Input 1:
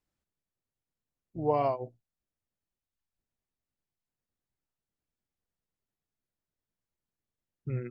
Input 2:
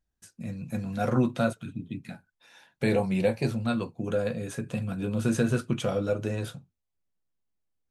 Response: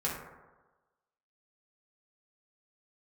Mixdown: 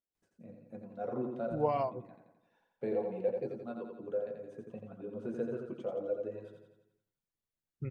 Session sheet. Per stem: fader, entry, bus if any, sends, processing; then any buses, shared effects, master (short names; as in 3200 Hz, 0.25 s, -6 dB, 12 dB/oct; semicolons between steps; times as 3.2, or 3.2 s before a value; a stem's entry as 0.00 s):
-3.5 dB, 0.15 s, send -22.5 dB, no echo send, reverb removal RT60 0.52 s
-6.0 dB, 0.00 s, no send, echo send -5 dB, reverb removal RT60 1.6 s; band-pass 470 Hz, Q 1.6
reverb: on, RT60 1.2 s, pre-delay 3 ms
echo: feedback echo 86 ms, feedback 56%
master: dry